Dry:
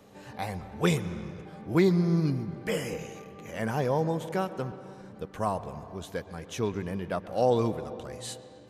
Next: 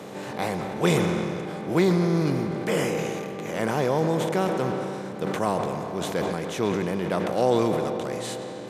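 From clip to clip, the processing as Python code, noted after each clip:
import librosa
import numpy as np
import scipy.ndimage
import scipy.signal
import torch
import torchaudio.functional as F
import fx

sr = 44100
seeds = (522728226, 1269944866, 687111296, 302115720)

y = fx.bin_compress(x, sr, power=0.6)
y = scipy.signal.sosfilt(scipy.signal.butter(2, 130.0, 'highpass', fs=sr, output='sos'), y)
y = fx.sustainer(y, sr, db_per_s=24.0)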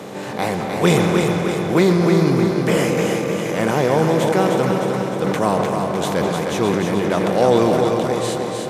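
y = fx.echo_feedback(x, sr, ms=306, feedback_pct=59, wet_db=-5)
y = F.gain(torch.from_numpy(y), 6.0).numpy()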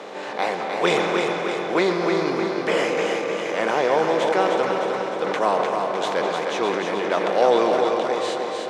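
y = fx.bandpass_edges(x, sr, low_hz=450.0, high_hz=4800.0)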